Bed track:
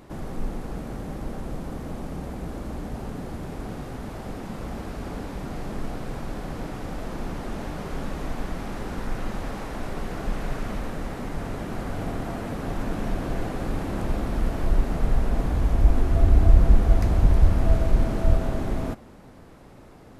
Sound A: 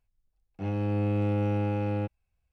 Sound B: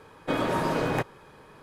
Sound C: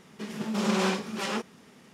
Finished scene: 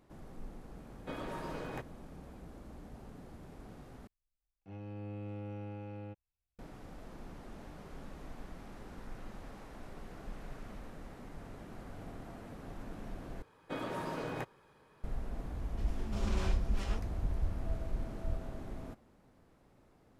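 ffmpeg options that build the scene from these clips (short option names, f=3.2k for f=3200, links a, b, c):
-filter_complex "[2:a]asplit=2[a][b];[0:a]volume=-17dB,asplit=3[c][d][e];[c]atrim=end=4.074[f];[1:a]atrim=end=2.52,asetpts=PTS-STARTPTS,volume=-16dB[g];[d]atrim=start=6.586:end=13.424[h];[b]atrim=end=1.62,asetpts=PTS-STARTPTS,volume=-12.5dB[i];[e]atrim=start=15.036[j];[a]atrim=end=1.62,asetpts=PTS-STARTPTS,volume=-15.5dB,afade=t=in:d=0.004:c=hsin,afade=t=out:st=1.616:d=0.004:c=hsin,adelay=790[k];[3:a]atrim=end=1.93,asetpts=PTS-STARTPTS,volume=-14.5dB,afade=t=in:d=0.004:c=hsin,afade=t=out:st=1.926:d=0.004:c=hsin,adelay=15580[l];[f][g]acrossfade=d=0.004:c1=hsin:c2=hsin[m];[m][h]acrossfade=d=0.004:c1=hsin:c2=hsin[n];[n][i]acrossfade=d=0.004:c1=hsin:c2=hsin[o];[o][j]acrossfade=d=0.004:c1=hsin:c2=hsin[p];[p][k][l]amix=inputs=3:normalize=0"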